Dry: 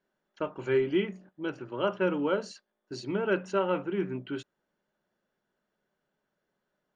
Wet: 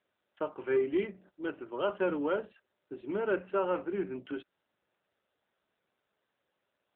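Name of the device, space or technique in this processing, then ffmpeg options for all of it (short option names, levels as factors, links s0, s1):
telephone: -af "highpass=270,lowpass=3300,asoftclip=type=tanh:threshold=0.119" -ar 8000 -c:a libopencore_amrnb -b:a 7400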